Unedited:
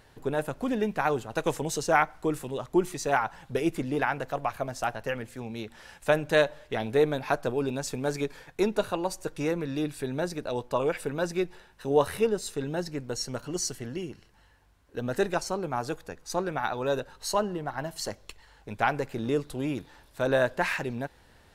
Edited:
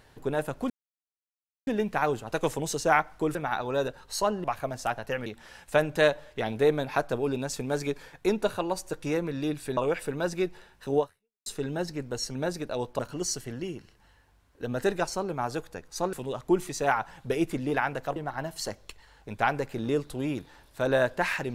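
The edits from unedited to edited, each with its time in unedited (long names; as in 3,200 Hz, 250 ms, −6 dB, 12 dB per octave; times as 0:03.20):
0:00.70: splice in silence 0.97 s
0:02.38–0:04.41: swap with 0:16.47–0:17.56
0:05.23–0:05.60: remove
0:10.11–0:10.75: move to 0:13.33
0:11.96–0:12.44: fade out exponential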